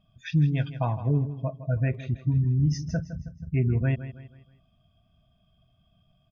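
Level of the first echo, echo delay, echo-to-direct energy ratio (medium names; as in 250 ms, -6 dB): -13.0 dB, 160 ms, -12.0 dB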